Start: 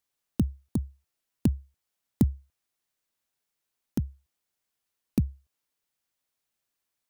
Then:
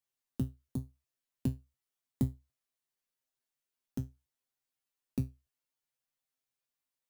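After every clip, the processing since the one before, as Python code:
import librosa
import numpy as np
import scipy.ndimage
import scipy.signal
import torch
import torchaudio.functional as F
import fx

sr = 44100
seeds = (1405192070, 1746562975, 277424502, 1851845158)

y = fx.comb_fb(x, sr, f0_hz=130.0, decay_s=0.2, harmonics='all', damping=0.0, mix_pct=90)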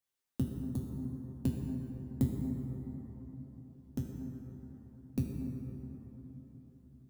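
y = fx.rev_plate(x, sr, seeds[0], rt60_s=4.6, hf_ratio=0.35, predelay_ms=0, drr_db=-0.5)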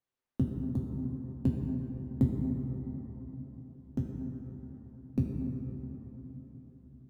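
y = fx.lowpass(x, sr, hz=1200.0, slope=6)
y = y * librosa.db_to_amplitude(4.0)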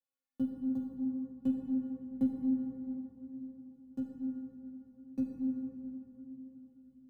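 y = fx.low_shelf(x, sr, hz=69.0, db=-11.5)
y = fx.stiff_resonator(y, sr, f0_hz=260.0, decay_s=0.28, stiffness=0.008)
y = fx.dynamic_eq(y, sr, hz=780.0, q=1.0, threshold_db=-59.0, ratio=4.0, max_db=6)
y = y * librosa.db_to_amplitude(6.5)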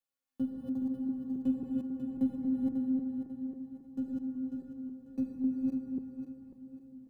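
y = fx.reverse_delay_fb(x, sr, ms=272, feedback_pct=58, wet_db=-2)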